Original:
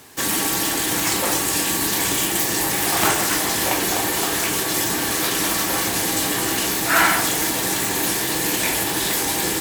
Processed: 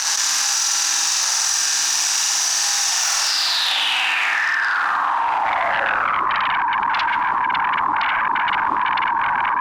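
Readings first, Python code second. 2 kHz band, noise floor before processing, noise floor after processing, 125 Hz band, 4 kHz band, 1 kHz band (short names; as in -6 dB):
+3.5 dB, -23 dBFS, -21 dBFS, under -15 dB, +3.0 dB, +7.0 dB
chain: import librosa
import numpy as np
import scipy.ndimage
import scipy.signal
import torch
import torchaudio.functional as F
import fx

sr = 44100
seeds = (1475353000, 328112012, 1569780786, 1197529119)

p1 = scipy.ndimage.median_filter(x, 41, mode='constant')
p2 = fx.room_flutter(p1, sr, wall_m=8.2, rt60_s=1.1)
p3 = fx.volume_shaper(p2, sr, bpm=145, per_beat=1, depth_db=-13, release_ms=68.0, shape='slow start')
p4 = p2 + F.gain(torch.from_numpy(p3), 2.0).numpy()
p5 = fx.filter_sweep_bandpass(p4, sr, from_hz=5900.0, to_hz=320.0, start_s=3.16, end_s=6.51, q=5.2)
p6 = fx.highpass(p5, sr, hz=220.0, slope=6)
p7 = fx.fold_sine(p6, sr, drive_db=16, ceiling_db=-16.0)
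p8 = fx.low_shelf_res(p7, sr, hz=660.0, db=-14.0, q=3.0)
p9 = fx.env_flatten(p8, sr, amount_pct=100)
y = F.gain(torch.from_numpy(p9), -5.5).numpy()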